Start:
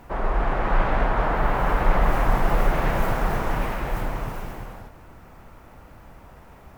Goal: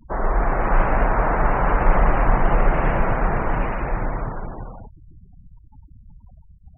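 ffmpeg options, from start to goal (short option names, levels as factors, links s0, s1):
-filter_complex "[0:a]afftfilt=real='re*gte(hypot(re,im),0.02)':imag='im*gte(hypot(re,im),0.02)':win_size=1024:overlap=0.75,acrossover=split=2900[s0][s1];[s1]acompressor=threshold=0.00224:ratio=4:attack=1:release=60[s2];[s0][s2]amix=inputs=2:normalize=0,volume=1.41"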